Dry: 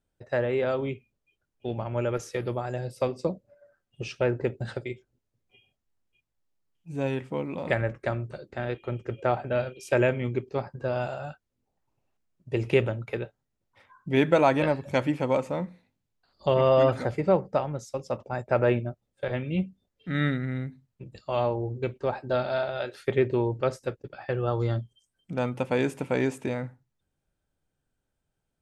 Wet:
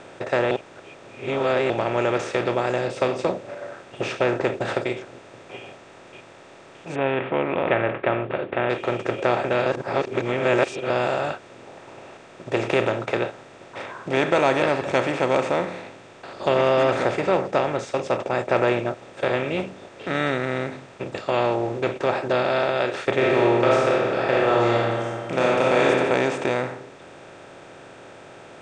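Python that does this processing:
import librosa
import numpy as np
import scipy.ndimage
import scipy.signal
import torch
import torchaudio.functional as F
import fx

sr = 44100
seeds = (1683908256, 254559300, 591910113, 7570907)

y = fx.steep_lowpass(x, sr, hz=3200.0, slope=96, at=(6.94, 8.69), fade=0.02)
y = fx.reverb_throw(y, sr, start_s=23.14, length_s=2.71, rt60_s=0.96, drr_db=-5.5)
y = fx.edit(y, sr, fx.reverse_span(start_s=0.51, length_s=1.19),
    fx.reverse_span(start_s=9.66, length_s=1.24), tone=tone)
y = fx.bin_compress(y, sr, power=0.4)
y = scipy.signal.sosfilt(scipy.signal.cheby1(4, 1.0, 8300.0, 'lowpass', fs=sr, output='sos'), y)
y = fx.low_shelf(y, sr, hz=230.0, db=-12.0)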